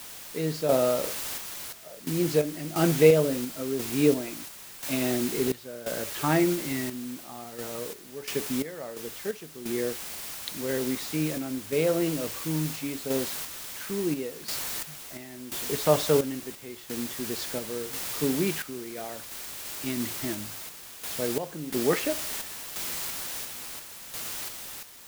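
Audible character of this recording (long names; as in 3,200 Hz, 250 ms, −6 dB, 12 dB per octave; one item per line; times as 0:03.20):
a quantiser's noise floor 6 bits, dither triangular
sample-and-hold tremolo 2.9 Hz, depth 85%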